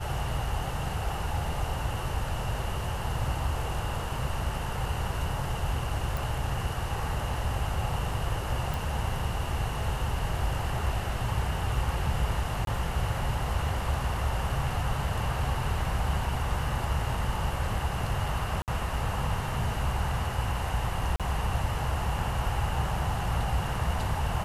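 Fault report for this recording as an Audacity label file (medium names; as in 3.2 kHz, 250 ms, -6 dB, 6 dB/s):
6.170000	6.170000	pop
8.740000	8.740000	pop
12.650000	12.670000	dropout 22 ms
18.620000	18.680000	dropout 58 ms
21.160000	21.200000	dropout 37 ms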